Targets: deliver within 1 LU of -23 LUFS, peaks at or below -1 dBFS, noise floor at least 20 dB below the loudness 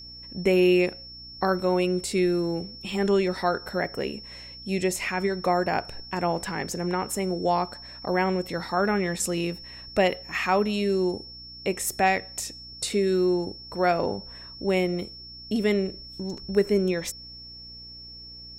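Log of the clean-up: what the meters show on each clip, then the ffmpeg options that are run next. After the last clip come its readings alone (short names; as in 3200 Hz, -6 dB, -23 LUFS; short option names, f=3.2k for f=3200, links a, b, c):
hum 60 Hz; harmonics up to 300 Hz; hum level -49 dBFS; steady tone 5400 Hz; tone level -41 dBFS; loudness -26.0 LUFS; peak -9.0 dBFS; loudness target -23.0 LUFS
-> -af "bandreject=f=60:t=h:w=4,bandreject=f=120:t=h:w=4,bandreject=f=180:t=h:w=4,bandreject=f=240:t=h:w=4,bandreject=f=300:t=h:w=4"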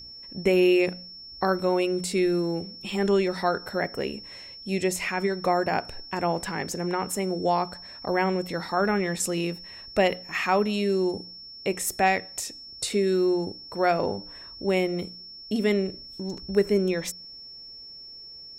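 hum none; steady tone 5400 Hz; tone level -41 dBFS
-> -af "bandreject=f=5.4k:w=30"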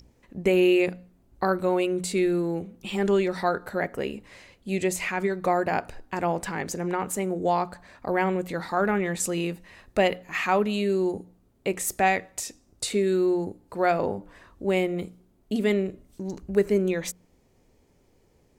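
steady tone none; loudness -26.5 LUFS; peak -9.0 dBFS; loudness target -23.0 LUFS
-> -af "volume=3.5dB"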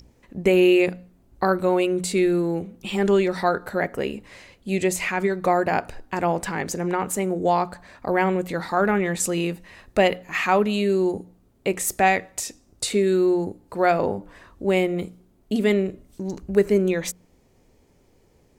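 loudness -23.0 LUFS; peak -5.5 dBFS; noise floor -59 dBFS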